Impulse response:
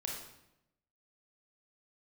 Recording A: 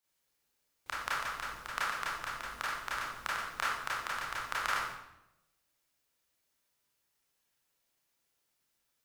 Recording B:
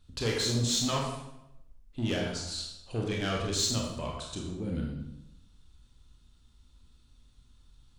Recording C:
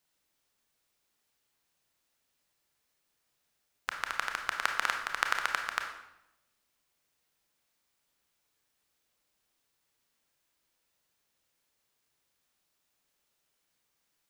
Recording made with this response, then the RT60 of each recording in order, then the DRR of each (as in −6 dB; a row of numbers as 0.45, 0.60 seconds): B; 0.85, 0.85, 0.85 seconds; −8.0, −1.5, 3.5 decibels